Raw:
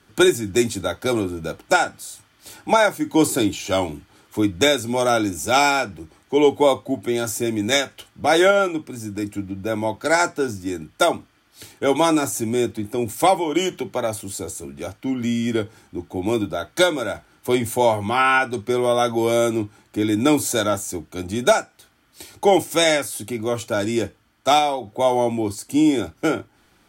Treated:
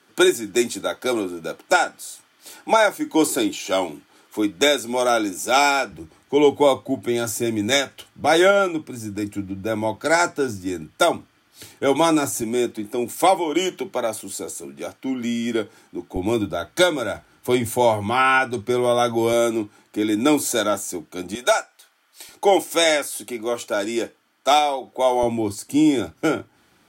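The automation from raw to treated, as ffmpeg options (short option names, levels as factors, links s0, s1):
-af "asetnsamples=n=441:p=0,asendcmd='5.92 highpass f 76;12.42 highpass f 210;16.16 highpass f 49;19.33 highpass f 190;21.35 highpass f 620;22.29 highpass f 300;25.23 highpass f 89',highpass=260"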